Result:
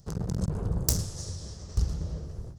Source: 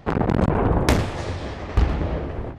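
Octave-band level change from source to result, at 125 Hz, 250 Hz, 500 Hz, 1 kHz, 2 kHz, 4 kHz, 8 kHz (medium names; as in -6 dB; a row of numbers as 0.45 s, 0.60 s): -7.5 dB, -12.5 dB, -17.5 dB, -22.5 dB, -23.5 dB, -5.0 dB, +5.5 dB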